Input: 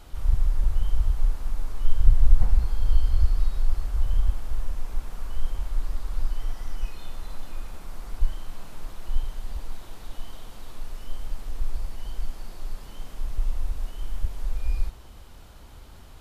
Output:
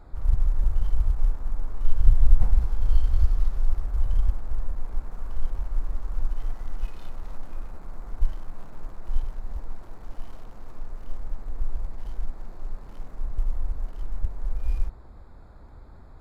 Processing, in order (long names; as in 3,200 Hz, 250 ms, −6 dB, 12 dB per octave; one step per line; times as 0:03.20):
adaptive Wiener filter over 15 samples